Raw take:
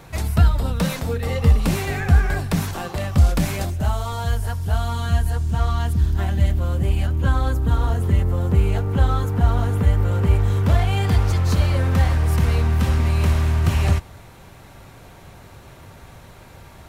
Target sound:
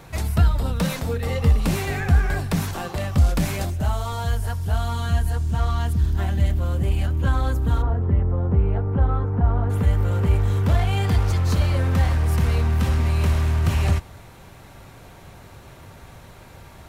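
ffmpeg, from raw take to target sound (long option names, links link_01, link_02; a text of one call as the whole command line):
ffmpeg -i in.wav -filter_complex "[0:a]asplit=3[link_01][link_02][link_03];[link_01]afade=type=out:start_time=7.81:duration=0.02[link_04];[link_02]lowpass=1300,afade=type=in:start_time=7.81:duration=0.02,afade=type=out:start_time=9.69:duration=0.02[link_05];[link_03]afade=type=in:start_time=9.69:duration=0.02[link_06];[link_04][link_05][link_06]amix=inputs=3:normalize=0,asplit=2[link_07][link_08];[link_08]asoftclip=type=tanh:threshold=-18dB,volume=-8dB[link_09];[link_07][link_09]amix=inputs=2:normalize=0,volume=-3.5dB" out.wav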